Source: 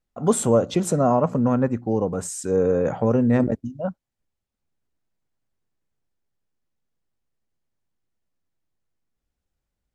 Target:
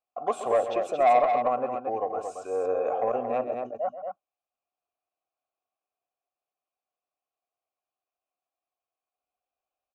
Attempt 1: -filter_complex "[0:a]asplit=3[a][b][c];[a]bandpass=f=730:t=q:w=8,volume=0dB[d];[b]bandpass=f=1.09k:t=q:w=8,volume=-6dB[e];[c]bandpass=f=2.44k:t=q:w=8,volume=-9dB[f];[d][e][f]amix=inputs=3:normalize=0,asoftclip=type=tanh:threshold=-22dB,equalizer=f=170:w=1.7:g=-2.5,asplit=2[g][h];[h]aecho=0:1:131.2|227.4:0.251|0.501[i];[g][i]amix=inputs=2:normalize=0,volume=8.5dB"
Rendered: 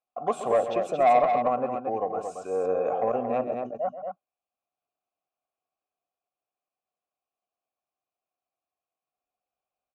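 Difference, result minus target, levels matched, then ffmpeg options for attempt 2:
125 Hz band +5.5 dB
-filter_complex "[0:a]asplit=3[a][b][c];[a]bandpass=f=730:t=q:w=8,volume=0dB[d];[b]bandpass=f=1.09k:t=q:w=8,volume=-6dB[e];[c]bandpass=f=2.44k:t=q:w=8,volume=-9dB[f];[d][e][f]amix=inputs=3:normalize=0,asoftclip=type=tanh:threshold=-22dB,equalizer=f=170:w=1.7:g=-14,asplit=2[g][h];[h]aecho=0:1:131.2|227.4:0.251|0.501[i];[g][i]amix=inputs=2:normalize=0,volume=8.5dB"

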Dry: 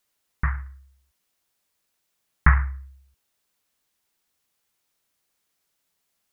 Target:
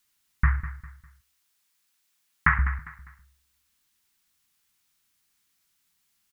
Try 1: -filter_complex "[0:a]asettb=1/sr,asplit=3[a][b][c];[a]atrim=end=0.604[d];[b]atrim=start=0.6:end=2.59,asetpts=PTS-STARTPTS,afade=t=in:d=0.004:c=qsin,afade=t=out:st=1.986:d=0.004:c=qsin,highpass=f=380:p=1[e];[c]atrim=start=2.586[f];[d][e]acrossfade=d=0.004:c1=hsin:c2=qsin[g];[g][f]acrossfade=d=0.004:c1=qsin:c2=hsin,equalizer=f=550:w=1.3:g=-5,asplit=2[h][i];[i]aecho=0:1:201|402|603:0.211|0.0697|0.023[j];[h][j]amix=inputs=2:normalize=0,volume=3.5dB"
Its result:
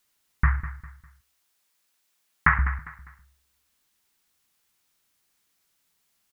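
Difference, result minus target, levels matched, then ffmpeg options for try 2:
500 Hz band +6.0 dB
-filter_complex "[0:a]asettb=1/sr,asplit=3[a][b][c];[a]atrim=end=0.604[d];[b]atrim=start=0.6:end=2.59,asetpts=PTS-STARTPTS,afade=t=in:d=0.004:c=qsin,afade=t=out:st=1.986:d=0.004:c=qsin,highpass=f=380:p=1[e];[c]atrim=start=2.586[f];[d][e]acrossfade=d=0.004:c1=hsin:c2=qsin[g];[g][f]acrossfade=d=0.004:c1=qsin:c2=hsin,equalizer=f=550:w=1.3:g=-15,asplit=2[h][i];[i]aecho=0:1:201|402|603:0.211|0.0697|0.023[j];[h][j]amix=inputs=2:normalize=0,volume=3.5dB"

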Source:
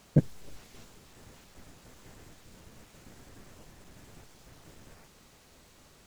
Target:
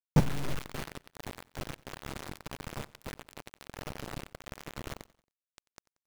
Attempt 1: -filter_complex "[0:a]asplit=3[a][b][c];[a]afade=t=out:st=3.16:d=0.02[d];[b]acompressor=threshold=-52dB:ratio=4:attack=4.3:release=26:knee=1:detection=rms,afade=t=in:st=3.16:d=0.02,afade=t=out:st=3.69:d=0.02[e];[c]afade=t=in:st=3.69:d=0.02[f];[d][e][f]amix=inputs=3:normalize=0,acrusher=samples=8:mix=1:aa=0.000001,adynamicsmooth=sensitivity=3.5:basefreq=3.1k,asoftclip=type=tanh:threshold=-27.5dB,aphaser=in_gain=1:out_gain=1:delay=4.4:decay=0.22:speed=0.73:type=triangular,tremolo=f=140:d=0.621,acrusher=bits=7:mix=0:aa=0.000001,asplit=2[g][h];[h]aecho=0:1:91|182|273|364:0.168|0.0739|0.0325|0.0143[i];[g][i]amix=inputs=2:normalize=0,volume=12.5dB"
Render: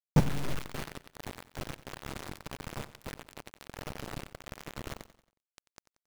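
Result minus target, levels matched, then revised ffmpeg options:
echo-to-direct +6 dB
-filter_complex "[0:a]asplit=3[a][b][c];[a]afade=t=out:st=3.16:d=0.02[d];[b]acompressor=threshold=-52dB:ratio=4:attack=4.3:release=26:knee=1:detection=rms,afade=t=in:st=3.16:d=0.02,afade=t=out:st=3.69:d=0.02[e];[c]afade=t=in:st=3.69:d=0.02[f];[d][e][f]amix=inputs=3:normalize=0,acrusher=samples=8:mix=1:aa=0.000001,adynamicsmooth=sensitivity=3.5:basefreq=3.1k,asoftclip=type=tanh:threshold=-27.5dB,aphaser=in_gain=1:out_gain=1:delay=4.4:decay=0.22:speed=0.73:type=triangular,tremolo=f=140:d=0.621,acrusher=bits=7:mix=0:aa=0.000001,asplit=2[g][h];[h]aecho=0:1:91|182|273:0.0841|0.037|0.0163[i];[g][i]amix=inputs=2:normalize=0,volume=12.5dB"

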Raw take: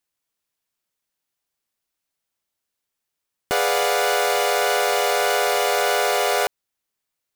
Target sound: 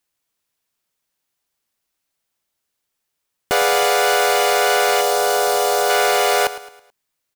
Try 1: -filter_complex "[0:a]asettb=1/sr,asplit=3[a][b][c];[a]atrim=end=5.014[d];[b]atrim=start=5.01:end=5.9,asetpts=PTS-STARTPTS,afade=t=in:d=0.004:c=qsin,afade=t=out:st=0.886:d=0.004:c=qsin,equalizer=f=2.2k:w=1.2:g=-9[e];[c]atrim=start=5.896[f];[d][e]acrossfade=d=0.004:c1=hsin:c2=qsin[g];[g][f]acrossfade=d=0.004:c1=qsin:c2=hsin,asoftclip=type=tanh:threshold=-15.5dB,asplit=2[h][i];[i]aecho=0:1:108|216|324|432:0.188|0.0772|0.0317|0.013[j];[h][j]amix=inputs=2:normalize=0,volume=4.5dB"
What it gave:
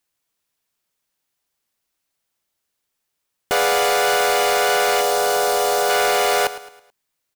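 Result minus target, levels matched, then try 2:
soft clip: distortion +10 dB
-filter_complex "[0:a]asettb=1/sr,asplit=3[a][b][c];[a]atrim=end=5.014[d];[b]atrim=start=5.01:end=5.9,asetpts=PTS-STARTPTS,afade=t=in:d=0.004:c=qsin,afade=t=out:st=0.886:d=0.004:c=qsin,equalizer=f=2.2k:w=1.2:g=-9[e];[c]atrim=start=5.896[f];[d][e]acrossfade=d=0.004:c1=hsin:c2=qsin[g];[g][f]acrossfade=d=0.004:c1=qsin:c2=hsin,asoftclip=type=tanh:threshold=-9dB,asplit=2[h][i];[i]aecho=0:1:108|216|324|432:0.188|0.0772|0.0317|0.013[j];[h][j]amix=inputs=2:normalize=0,volume=4.5dB"

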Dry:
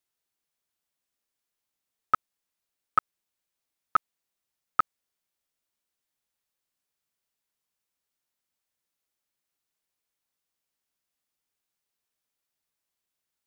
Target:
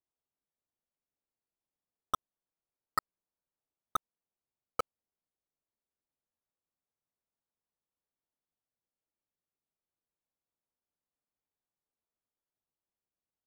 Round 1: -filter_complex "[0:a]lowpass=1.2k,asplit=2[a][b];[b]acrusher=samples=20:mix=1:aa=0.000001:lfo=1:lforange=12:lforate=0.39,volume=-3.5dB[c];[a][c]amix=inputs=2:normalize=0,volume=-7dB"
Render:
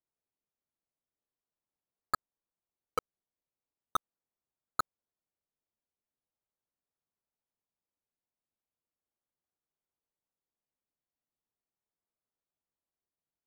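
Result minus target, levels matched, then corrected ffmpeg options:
decimation with a swept rate: distortion -10 dB
-filter_complex "[0:a]lowpass=1.2k,asplit=2[a][b];[b]acrusher=samples=20:mix=1:aa=0.000001:lfo=1:lforange=12:lforate=0.24,volume=-3.5dB[c];[a][c]amix=inputs=2:normalize=0,volume=-7dB"

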